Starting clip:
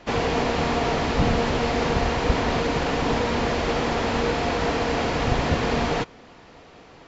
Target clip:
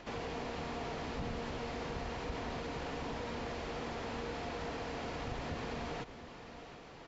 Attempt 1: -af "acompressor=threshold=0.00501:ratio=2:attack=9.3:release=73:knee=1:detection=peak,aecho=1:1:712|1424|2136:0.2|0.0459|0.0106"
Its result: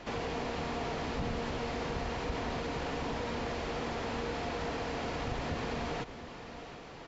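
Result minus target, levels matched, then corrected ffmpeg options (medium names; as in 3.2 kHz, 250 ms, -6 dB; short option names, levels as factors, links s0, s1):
compression: peak gain reduction -4.5 dB
-af "acompressor=threshold=0.00178:ratio=2:attack=9.3:release=73:knee=1:detection=peak,aecho=1:1:712|1424|2136:0.2|0.0459|0.0106"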